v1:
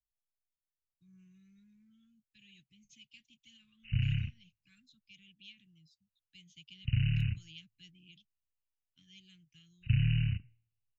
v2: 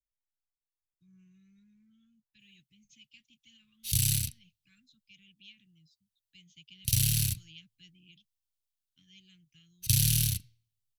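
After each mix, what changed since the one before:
background: remove brick-wall FIR low-pass 3000 Hz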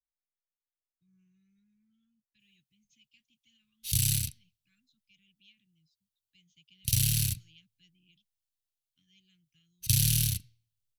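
speech -8.0 dB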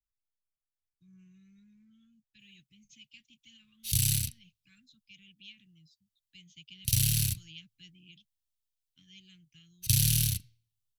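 speech +11.0 dB

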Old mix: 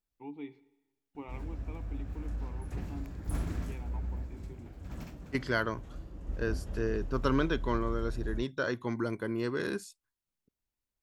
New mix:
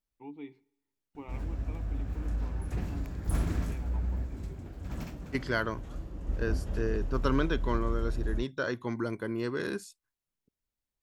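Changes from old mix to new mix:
first voice: send -10.0 dB; background +4.5 dB

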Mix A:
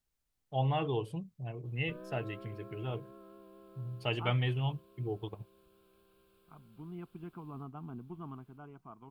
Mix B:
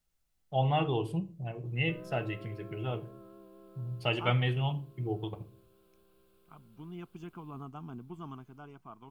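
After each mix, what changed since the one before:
second voice: remove air absorption 490 m; background: add bell 2300 Hz -4 dB 2 oct; reverb: on, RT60 0.40 s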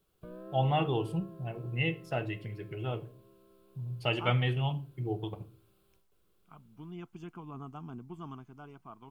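background: entry -1.65 s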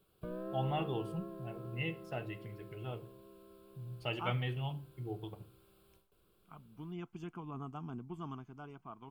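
first voice -7.5 dB; background +4.0 dB

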